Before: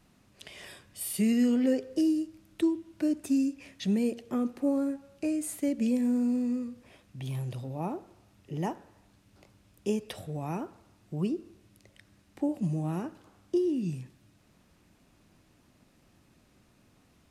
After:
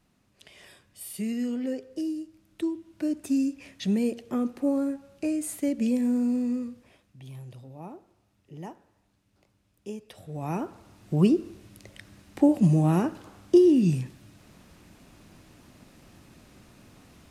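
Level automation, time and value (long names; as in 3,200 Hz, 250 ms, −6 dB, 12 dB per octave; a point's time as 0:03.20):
0:02.24 −5 dB
0:03.49 +2 dB
0:06.66 +2 dB
0:07.19 −8 dB
0:10.13 −8 dB
0:10.45 +3 dB
0:11.16 +10 dB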